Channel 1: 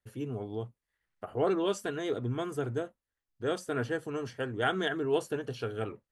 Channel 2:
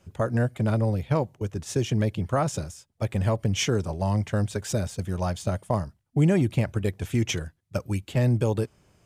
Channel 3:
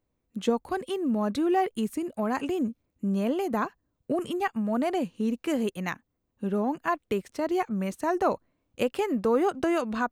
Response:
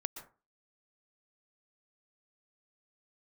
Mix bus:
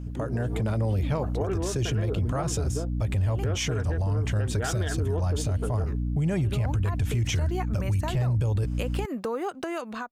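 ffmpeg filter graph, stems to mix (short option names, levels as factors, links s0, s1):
-filter_complex "[0:a]afwtdn=0.00794,lowpass=4500,volume=1.33,asplit=2[s0][s1];[1:a]asubboost=boost=10.5:cutoff=77,alimiter=limit=0.141:level=0:latency=1:release=118,aeval=exprs='val(0)+0.02*(sin(2*PI*60*n/s)+sin(2*PI*2*60*n/s)/2+sin(2*PI*3*60*n/s)/3+sin(2*PI*4*60*n/s)/4+sin(2*PI*5*60*n/s)/5)':c=same,volume=1[s2];[2:a]lowshelf=f=330:g=-9.5,acompressor=threshold=0.0251:ratio=6,volume=0.708[s3];[s1]apad=whole_len=446253[s4];[s3][s4]sidechaincompress=threshold=0.00631:ratio=10:attack=9.4:release=619[s5];[s2][s5]amix=inputs=2:normalize=0,dynaudnorm=f=170:g=5:m=2.51,alimiter=limit=0.158:level=0:latency=1:release=47,volume=1[s6];[s0][s6]amix=inputs=2:normalize=0,alimiter=limit=0.112:level=0:latency=1:release=130"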